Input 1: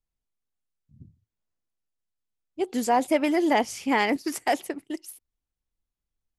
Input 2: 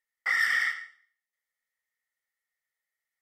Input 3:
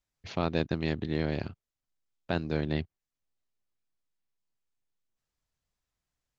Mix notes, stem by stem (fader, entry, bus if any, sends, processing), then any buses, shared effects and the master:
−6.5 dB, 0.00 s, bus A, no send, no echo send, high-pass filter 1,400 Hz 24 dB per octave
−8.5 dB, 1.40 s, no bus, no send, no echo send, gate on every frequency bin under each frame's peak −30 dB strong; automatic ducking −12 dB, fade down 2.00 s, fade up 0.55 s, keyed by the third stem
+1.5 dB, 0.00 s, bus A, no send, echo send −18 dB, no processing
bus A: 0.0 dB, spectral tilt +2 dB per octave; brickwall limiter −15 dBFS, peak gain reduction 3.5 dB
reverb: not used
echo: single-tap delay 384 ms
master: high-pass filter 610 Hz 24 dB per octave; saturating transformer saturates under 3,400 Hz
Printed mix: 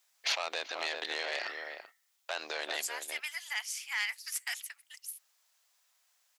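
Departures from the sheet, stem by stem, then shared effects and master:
stem 2: entry 1.40 s → 1.05 s
stem 3 +1.5 dB → +12.5 dB

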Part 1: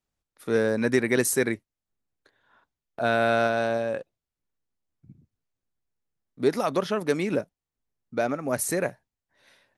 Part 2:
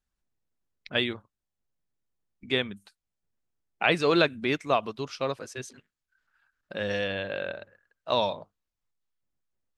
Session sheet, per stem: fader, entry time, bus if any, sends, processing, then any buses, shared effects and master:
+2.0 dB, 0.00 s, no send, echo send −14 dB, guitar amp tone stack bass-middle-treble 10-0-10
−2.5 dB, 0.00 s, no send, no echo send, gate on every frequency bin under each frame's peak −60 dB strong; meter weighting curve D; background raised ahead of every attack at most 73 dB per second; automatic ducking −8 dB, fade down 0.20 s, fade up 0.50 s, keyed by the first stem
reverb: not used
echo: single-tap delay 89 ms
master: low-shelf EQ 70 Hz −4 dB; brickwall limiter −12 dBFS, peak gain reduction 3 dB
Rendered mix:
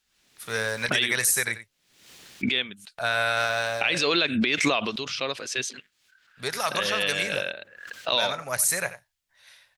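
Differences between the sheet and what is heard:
stem 1 +2.0 dB → +10.0 dB
stem 2 −2.5 dB → +6.0 dB

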